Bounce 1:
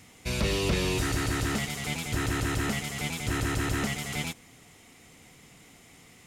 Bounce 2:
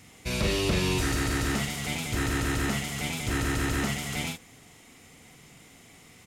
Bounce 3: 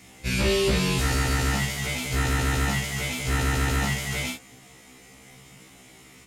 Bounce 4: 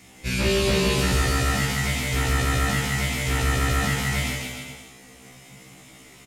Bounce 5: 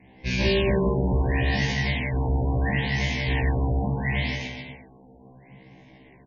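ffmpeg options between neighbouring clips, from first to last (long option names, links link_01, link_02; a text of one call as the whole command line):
ffmpeg -i in.wav -filter_complex "[0:a]asplit=2[link_01][link_02];[link_02]adelay=44,volume=-5dB[link_03];[link_01][link_03]amix=inputs=2:normalize=0" out.wav
ffmpeg -i in.wav -af "afftfilt=real='re*1.73*eq(mod(b,3),0)':imag='im*1.73*eq(mod(b,3),0)':win_size=2048:overlap=0.75,volume=5.5dB" out.wav
ffmpeg -i in.wav -af "aecho=1:1:160|296|411.6|509.9|593.4:0.631|0.398|0.251|0.158|0.1" out.wav
ffmpeg -i in.wav -af "adynamicsmooth=sensitivity=8:basefreq=1700,asuperstop=centerf=1300:order=8:qfactor=2.8,afftfilt=real='re*lt(b*sr/1024,960*pow(6900/960,0.5+0.5*sin(2*PI*0.73*pts/sr)))':imag='im*lt(b*sr/1024,960*pow(6900/960,0.5+0.5*sin(2*PI*0.73*pts/sr)))':win_size=1024:overlap=0.75" out.wav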